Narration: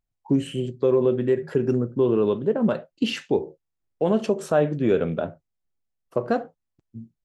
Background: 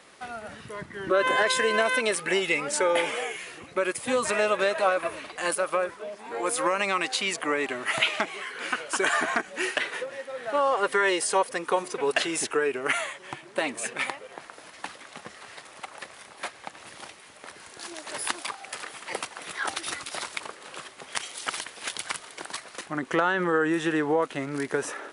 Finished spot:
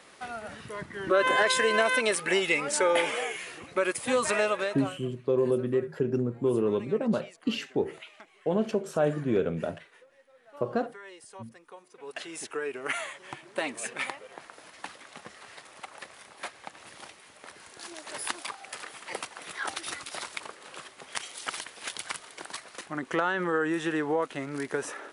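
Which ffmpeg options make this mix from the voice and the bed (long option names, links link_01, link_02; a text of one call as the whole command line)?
ffmpeg -i stem1.wav -i stem2.wav -filter_complex "[0:a]adelay=4450,volume=-5.5dB[link_01];[1:a]volume=19.5dB,afade=type=out:start_time=4.33:duration=0.63:silence=0.0707946,afade=type=in:start_time=11.9:duration=1.3:silence=0.1[link_02];[link_01][link_02]amix=inputs=2:normalize=0" out.wav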